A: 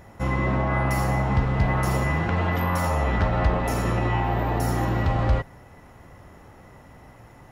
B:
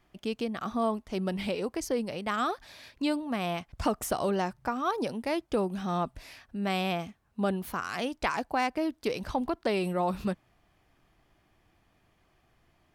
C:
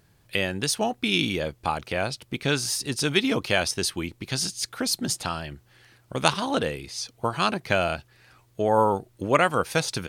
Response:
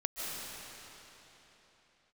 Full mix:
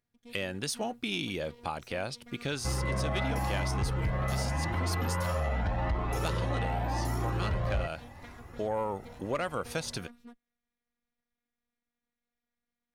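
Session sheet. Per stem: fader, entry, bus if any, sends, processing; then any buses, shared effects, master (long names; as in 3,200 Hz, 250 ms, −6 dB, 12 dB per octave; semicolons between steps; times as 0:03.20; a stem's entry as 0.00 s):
+2.0 dB, 2.45 s, no send, flanger whose copies keep moving one way rising 0.86 Hz
−18.5 dB, 0.00 s, no send, lower of the sound and its delayed copy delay 0.52 ms; phases set to zero 239 Hz
−6.5 dB, 0.00 s, no send, noise gate with hold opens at −48 dBFS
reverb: not used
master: parametric band 560 Hz +3.5 dB 0.2 octaves; soft clipping −16.5 dBFS, distortion −17 dB; downward compressor 2.5 to 1, threshold −30 dBFS, peak gain reduction 7.5 dB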